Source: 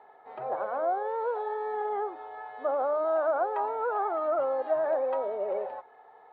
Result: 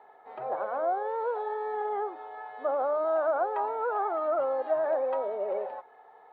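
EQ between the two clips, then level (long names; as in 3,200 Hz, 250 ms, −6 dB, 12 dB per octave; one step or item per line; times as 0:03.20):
high-pass filter 120 Hz 6 dB per octave
0.0 dB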